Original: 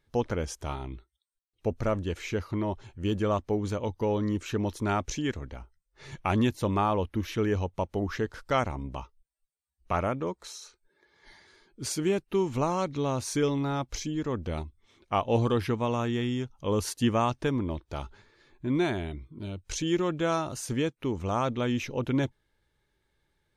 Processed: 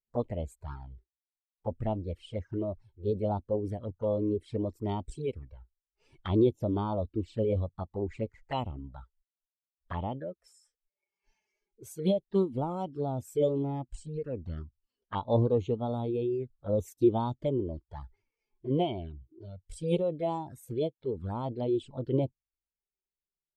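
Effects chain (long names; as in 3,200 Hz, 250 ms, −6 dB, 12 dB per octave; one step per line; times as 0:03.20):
formants moved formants +5 semitones
flanger swept by the level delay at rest 5.3 ms, full sweep at −25 dBFS
every bin expanded away from the loudest bin 1.5 to 1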